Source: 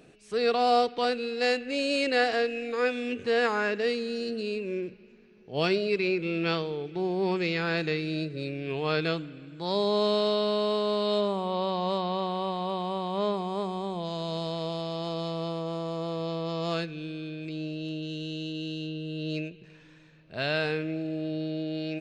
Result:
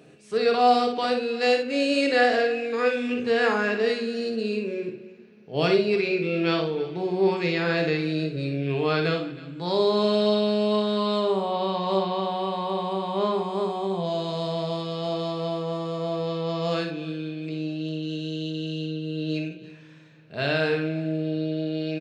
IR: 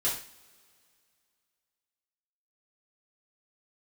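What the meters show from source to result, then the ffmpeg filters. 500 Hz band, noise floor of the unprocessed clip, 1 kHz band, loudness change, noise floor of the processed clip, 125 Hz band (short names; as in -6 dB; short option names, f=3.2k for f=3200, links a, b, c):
+4.0 dB, -54 dBFS, +4.0 dB, +4.0 dB, -48 dBFS, +4.5 dB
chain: -filter_complex "[0:a]highpass=110,aecho=1:1:57|316:0.473|0.112,asplit=2[a][b];[1:a]atrim=start_sample=2205,lowshelf=f=440:g=6,highshelf=f=5k:g=-11.5[c];[b][c]afir=irnorm=-1:irlink=0,volume=-11dB[d];[a][d]amix=inputs=2:normalize=0"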